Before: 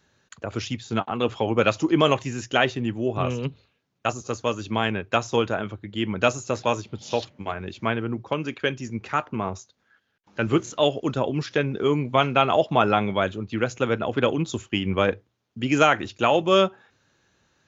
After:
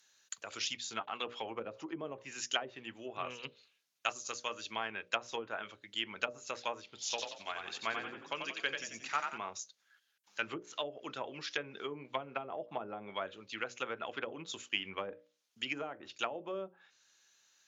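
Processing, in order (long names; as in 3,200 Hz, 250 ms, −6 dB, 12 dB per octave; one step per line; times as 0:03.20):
treble cut that deepens with the level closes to 440 Hz, closed at −15.5 dBFS
first difference
mains-hum notches 60/120/180/240/300/360/420/480/540/600 Hz
0:07.09–0:09.38: echo with shifted repeats 90 ms, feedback 41%, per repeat +39 Hz, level −5 dB
level +6 dB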